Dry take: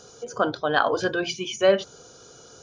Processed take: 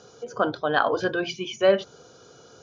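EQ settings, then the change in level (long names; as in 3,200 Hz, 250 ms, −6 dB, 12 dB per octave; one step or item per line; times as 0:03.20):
high-pass filter 79 Hz
high-frequency loss of the air 110 metres
0.0 dB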